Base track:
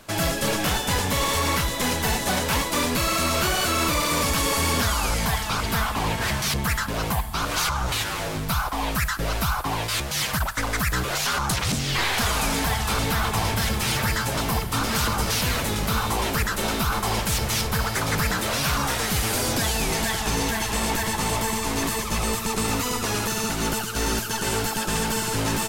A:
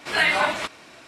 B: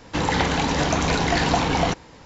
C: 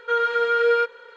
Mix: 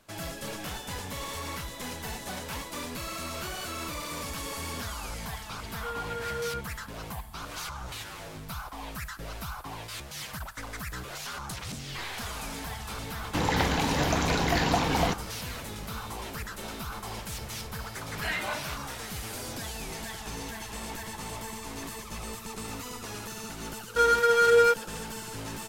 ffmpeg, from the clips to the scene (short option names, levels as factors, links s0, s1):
-filter_complex "[3:a]asplit=2[s0][s1];[0:a]volume=0.211[s2];[s1]adynamicsmooth=sensitivity=4.5:basefreq=600[s3];[s0]atrim=end=1.16,asetpts=PTS-STARTPTS,volume=0.178,afade=t=in:d=0.004:c=hsin,afade=t=out:st=1.156:d=0.004:c=hsin,adelay=5750[s4];[2:a]atrim=end=2.25,asetpts=PTS-STARTPTS,volume=0.562,afade=t=in:d=0.004:c=hsin,afade=t=out:st=2.246:d=0.004:c=hsin,adelay=13200[s5];[1:a]atrim=end=1.07,asetpts=PTS-STARTPTS,volume=0.237,afade=t=in:d=0.004:c=hsin,afade=t=out:st=1.066:d=0.004:c=hsin,adelay=18080[s6];[s3]atrim=end=1.16,asetpts=PTS-STARTPTS,volume=0.944,afade=t=in:d=0.004:c=hsin,afade=t=out:st=1.156:d=0.004:c=hsin,adelay=23880[s7];[s2][s4][s5][s6][s7]amix=inputs=5:normalize=0"